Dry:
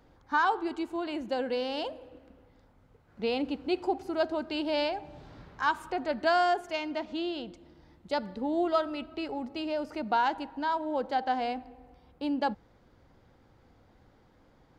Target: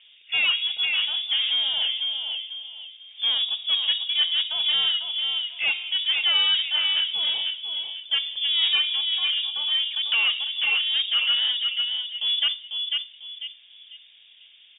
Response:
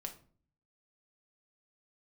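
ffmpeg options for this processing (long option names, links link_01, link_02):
-filter_complex "[0:a]equalizer=frequency=2400:width=0.86:gain=-14,asplit=2[link_01][link_02];[link_02]adelay=496,lowpass=frequency=2900:poles=1,volume=-6.5dB,asplit=2[link_03][link_04];[link_04]adelay=496,lowpass=frequency=2900:poles=1,volume=0.3,asplit=2[link_05][link_06];[link_06]adelay=496,lowpass=frequency=2900:poles=1,volume=0.3,asplit=2[link_07][link_08];[link_08]adelay=496,lowpass=frequency=2900:poles=1,volume=0.3[link_09];[link_01][link_03][link_05][link_07][link_09]amix=inputs=5:normalize=0,asplit=2[link_10][link_11];[link_11]highpass=frequency=720:poles=1,volume=19dB,asoftclip=type=tanh:threshold=-18dB[link_12];[link_10][link_12]amix=inputs=2:normalize=0,lowpass=frequency=2600:poles=1,volume=-6dB,asplit=2[link_13][link_14];[1:a]atrim=start_sample=2205[link_15];[link_14][link_15]afir=irnorm=-1:irlink=0,volume=-3.5dB[link_16];[link_13][link_16]amix=inputs=2:normalize=0,lowpass=frequency=3100:width_type=q:width=0.5098,lowpass=frequency=3100:width_type=q:width=0.6013,lowpass=frequency=3100:width_type=q:width=0.9,lowpass=frequency=3100:width_type=q:width=2.563,afreqshift=-3700"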